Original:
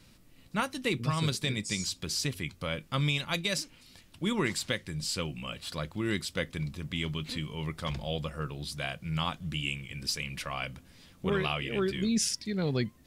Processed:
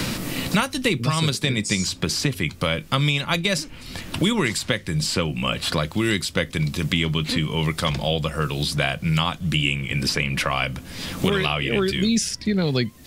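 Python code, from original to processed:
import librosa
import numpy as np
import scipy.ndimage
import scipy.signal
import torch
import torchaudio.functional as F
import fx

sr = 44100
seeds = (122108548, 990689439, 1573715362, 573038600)

y = fx.band_squash(x, sr, depth_pct=100)
y = F.gain(torch.from_numpy(y), 9.0).numpy()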